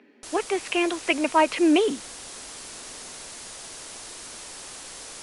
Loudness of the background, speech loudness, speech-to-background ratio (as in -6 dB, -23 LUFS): -38.0 LUFS, -23.5 LUFS, 14.5 dB